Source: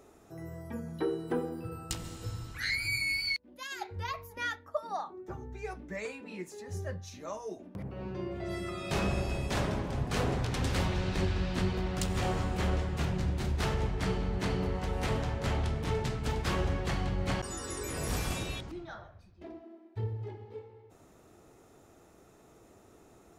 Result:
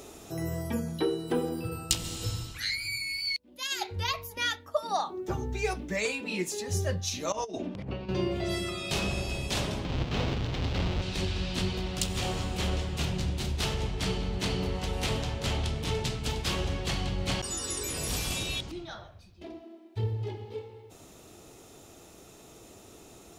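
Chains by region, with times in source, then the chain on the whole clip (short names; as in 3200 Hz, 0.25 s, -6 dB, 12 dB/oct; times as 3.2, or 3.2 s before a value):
7.32–8.09 LPF 4700 Hz + negative-ratio compressor -44 dBFS, ratio -0.5 + mismatched tape noise reduction encoder only
9.84–11.02 half-waves squared off + air absorption 200 m
whole clip: resonant high shelf 2300 Hz +7 dB, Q 1.5; vocal rider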